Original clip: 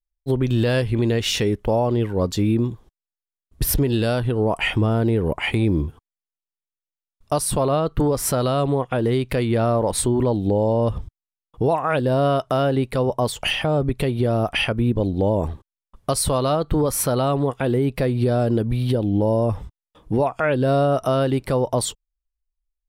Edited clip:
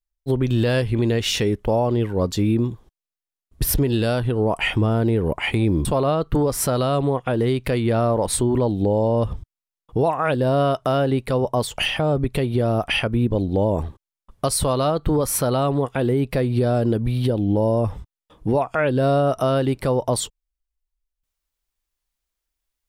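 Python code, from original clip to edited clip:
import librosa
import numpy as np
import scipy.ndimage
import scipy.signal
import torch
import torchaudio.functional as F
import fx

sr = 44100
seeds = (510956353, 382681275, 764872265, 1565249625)

y = fx.edit(x, sr, fx.cut(start_s=5.85, length_s=1.65), tone=tone)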